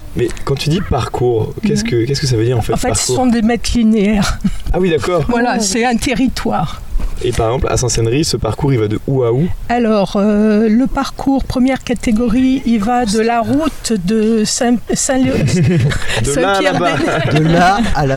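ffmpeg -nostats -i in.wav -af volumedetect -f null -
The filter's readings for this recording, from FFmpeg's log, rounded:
mean_volume: -13.4 dB
max_volume: -4.5 dB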